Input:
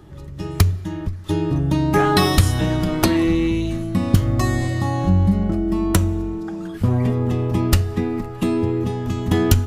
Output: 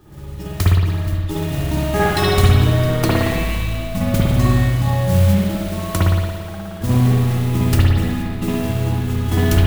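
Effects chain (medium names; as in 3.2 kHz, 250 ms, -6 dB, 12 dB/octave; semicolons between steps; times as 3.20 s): modulation noise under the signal 14 dB; spring tank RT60 1.5 s, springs 56 ms, chirp 20 ms, DRR -7 dB; trim -5 dB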